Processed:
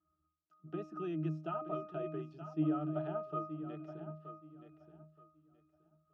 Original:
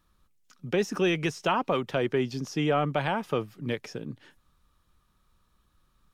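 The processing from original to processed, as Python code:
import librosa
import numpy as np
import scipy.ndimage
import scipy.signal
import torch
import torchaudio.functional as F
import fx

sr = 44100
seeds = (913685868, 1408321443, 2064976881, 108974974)

p1 = fx.highpass(x, sr, hz=180.0, slope=6)
p2 = fx.bass_treble(p1, sr, bass_db=-7, treble_db=0)
p3 = fx.notch(p2, sr, hz=2500.0, q=7.2)
p4 = fx.octave_resonator(p3, sr, note='D#', decay_s=0.45)
p5 = p4 + fx.echo_feedback(p4, sr, ms=924, feedback_pct=22, wet_db=-11.0, dry=0)
y = p5 * librosa.db_to_amplitude(10.5)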